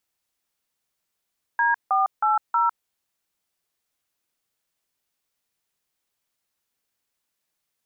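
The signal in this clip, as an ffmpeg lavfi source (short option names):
-f lavfi -i "aevalsrc='0.1*clip(min(mod(t,0.317),0.154-mod(t,0.317))/0.002,0,1)*(eq(floor(t/0.317),0)*(sin(2*PI*941*mod(t,0.317))+sin(2*PI*1633*mod(t,0.317)))+eq(floor(t/0.317),1)*(sin(2*PI*770*mod(t,0.317))+sin(2*PI*1209*mod(t,0.317)))+eq(floor(t/0.317),2)*(sin(2*PI*852*mod(t,0.317))+sin(2*PI*1336*mod(t,0.317)))+eq(floor(t/0.317),3)*(sin(2*PI*941*mod(t,0.317))+sin(2*PI*1336*mod(t,0.317))))':d=1.268:s=44100"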